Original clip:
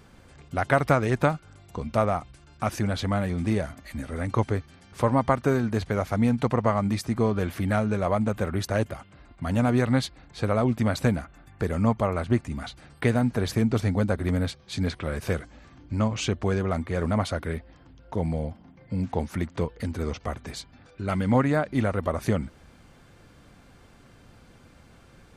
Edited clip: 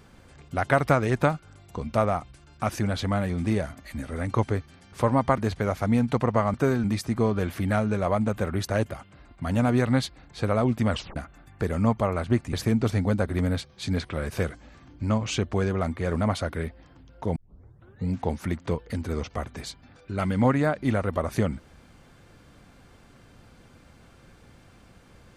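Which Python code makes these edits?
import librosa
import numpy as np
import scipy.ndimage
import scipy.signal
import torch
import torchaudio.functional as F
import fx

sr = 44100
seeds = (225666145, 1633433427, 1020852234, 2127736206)

y = fx.edit(x, sr, fx.move(start_s=5.38, length_s=0.3, to_s=6.84),
    fx.tape_stop(start_s=10.9, length_s=0.26),
    fx.cut(start_s=12.53, length_s=0.9),
    fx.tape_start(start_s=18.26, length_s=0.74), tone=tone)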